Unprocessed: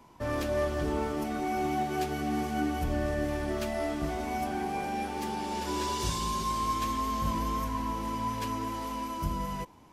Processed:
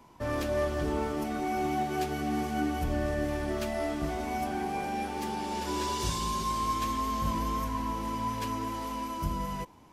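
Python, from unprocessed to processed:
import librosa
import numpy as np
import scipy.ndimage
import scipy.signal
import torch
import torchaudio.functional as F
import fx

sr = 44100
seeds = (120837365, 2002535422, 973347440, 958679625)

y = fx.dmg_crackle(x, sr, seeds[0], per_s=44.0, level_db=-44.0, at=(8.17, 8.8), fade=0.02)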